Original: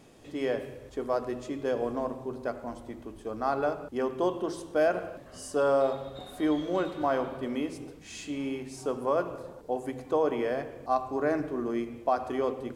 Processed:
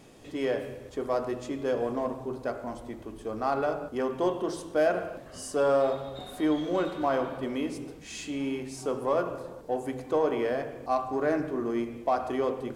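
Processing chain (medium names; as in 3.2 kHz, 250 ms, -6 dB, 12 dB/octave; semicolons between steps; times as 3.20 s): de-hum 48.45 Hz, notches 36; in parallel at -8 dB: saturation -32.5 dBFS, distortion -6 dB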